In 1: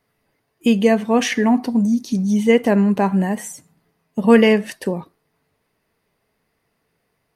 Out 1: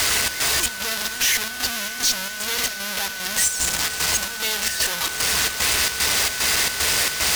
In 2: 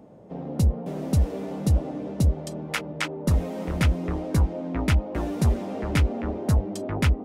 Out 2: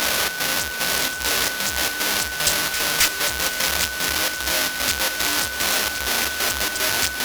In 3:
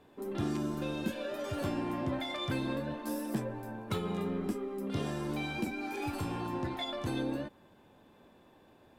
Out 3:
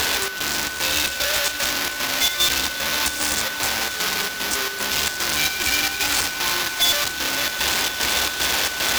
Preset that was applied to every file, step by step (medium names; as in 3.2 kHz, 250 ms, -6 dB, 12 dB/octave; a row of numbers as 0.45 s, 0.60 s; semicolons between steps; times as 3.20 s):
one-bit comparator; peak limiter -29.5 dBFS; frequency weighting ITU-R 468; fuzz box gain 55 dB, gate -51 dBFS; square tremolo 2.5 Hz, depth 65%, duty 70%; peaking EQ 66 Hz +14.5 dB 0.64 oct; on a send: echo that smears into a reverb 583 ms, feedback 73%, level -13.5 dB; on the sum: whistle 1.5 kHz -29 dBFS; normalise loudness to -20 LUFS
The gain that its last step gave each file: -4.0 dB, +0.5 dB, -1.5 dB